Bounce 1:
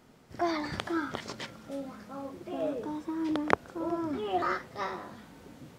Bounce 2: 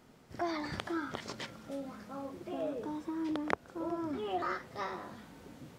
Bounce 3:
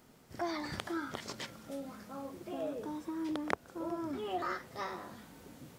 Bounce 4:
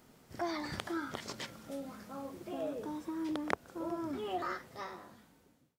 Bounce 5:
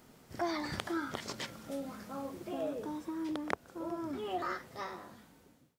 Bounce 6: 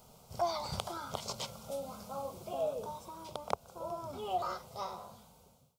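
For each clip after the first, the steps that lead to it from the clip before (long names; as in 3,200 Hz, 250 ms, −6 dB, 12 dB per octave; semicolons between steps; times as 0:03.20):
downward compressor 1.5 to 1, threshold −36 dBFS, peak gain reduction 7.5 dB; level −1.5 dB
high-shelf EQ 7,700 Hz +10.5 dB; level −1.5 dB
fade-out on the ending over 1.50 s
speech leveller within 5 dB 2 s
phaser with its sweep stopped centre 740 Hz, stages 4; level +4.5 dB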